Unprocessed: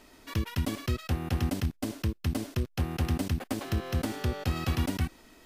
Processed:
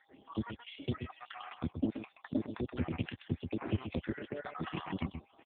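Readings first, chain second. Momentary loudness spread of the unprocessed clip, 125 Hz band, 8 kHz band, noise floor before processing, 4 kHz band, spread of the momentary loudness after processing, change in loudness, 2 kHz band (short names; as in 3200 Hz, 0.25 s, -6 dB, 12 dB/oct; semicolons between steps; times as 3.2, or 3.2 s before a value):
4 LU, -10.5 dB, under -35 dB, -61 dBFS, -9.5 dB, 6 LU, -7.5 dB, -6.5 dB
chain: random spectral dropouts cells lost 62%; HPF 78 Hz 12 dB/oct; on a send: echo 0.128 s -8.5 dB; on the sum: whine 800 Hz -66 dBFS; gain +2 dB; AMR-NB 5.15 kbps 8000 Hz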